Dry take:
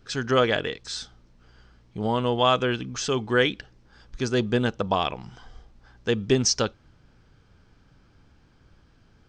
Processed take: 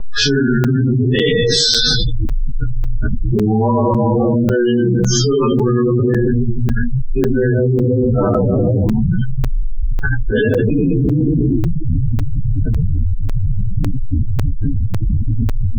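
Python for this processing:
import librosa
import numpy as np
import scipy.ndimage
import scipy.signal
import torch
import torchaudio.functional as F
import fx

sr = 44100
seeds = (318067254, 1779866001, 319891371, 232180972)

p1 = fx.gate_flip(x, sr, shuts_db=-13.0, range_db=-39)
p2 = fx.fold_sine(p1, sr, drive_db=5, ceiling_db=-12.5)
p3 = p1 + (p2 * 10.0 ** (-11.5 / 20.0))
p4 = fx.room_shoebox(p3, sr, seeds[0], volume_m3=270.0, walls='mixed', distance_m=3.4)
p5 = fx.spec_gate(p4, sr, threshold_db=-15, keep='strong')
p6 = fx.rotary_switch(p5, sr, hz=0.8, then_hz=6.7, switch_at_s=6.5)
p7 = fx.stretch_vocoder(p6, sr, factor=1.7)
p8 = fx.env_lowpass(p7, sr, base_hz=1000.0, full_db=-22.5)
p9 = fx.buffer_crackle(p8, sr, first_s=0.64, period_s=0.55, block=256, kind='zero')
p10 = fx.env_flatten(p9, sr, amount_pct=100)
y = p10 * 10.0 ** (-5.0 / 20.0)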